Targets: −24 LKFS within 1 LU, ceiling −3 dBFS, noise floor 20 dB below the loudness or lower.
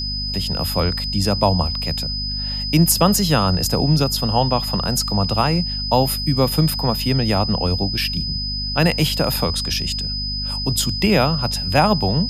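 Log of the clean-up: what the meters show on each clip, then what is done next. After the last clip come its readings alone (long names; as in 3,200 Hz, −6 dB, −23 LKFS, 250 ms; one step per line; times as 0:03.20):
mains hum 50 Hz; hum harmonics up to 250 Hz; level of the hum −27 dBFS; interfering tone 5,000 Hz; level of the tone −24 dBFS; integrated loudness −19.0 LKFS; sample peak −1.5 dBFS; target loudness −24.0 LKFS
→ mains-hum notches 50/100/150/200/250 Hz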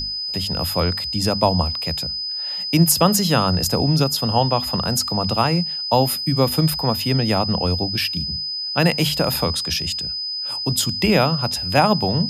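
mains hum none found; interfering tone 5,000 Hz; level of the tone −24 dBFS
→ notch filter 5,000 Hz, Q 30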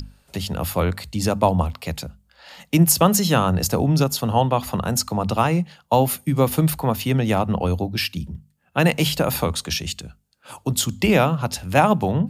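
interfering tone none found; integrated loudness −21.0 LKFS; sample peak −2.0 dBFS; target loudness −24.0 LKFS
→ level −3 dB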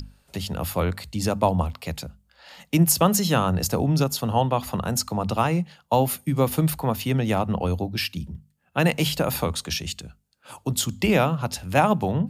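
integrated loudness −24.0 LKFS; sample peak −5.0 dBFS; background noise floor −65 dBFS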